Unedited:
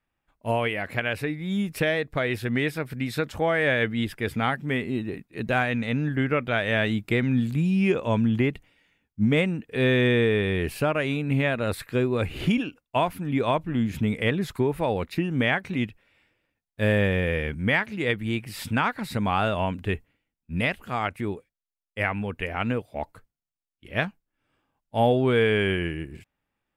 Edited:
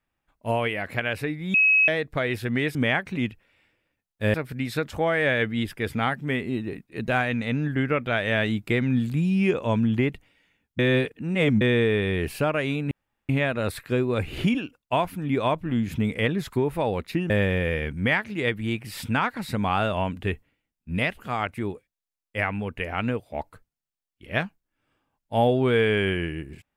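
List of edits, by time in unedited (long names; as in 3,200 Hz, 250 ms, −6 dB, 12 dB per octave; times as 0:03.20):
0:01.54–0:01.88: beep over 2,560 Hz −15 dBFS
0:09.20–0:10.02: reverse
0:11.32: splice in room tone 0.38 s
0:15.33–0:16.92: move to 0:02.75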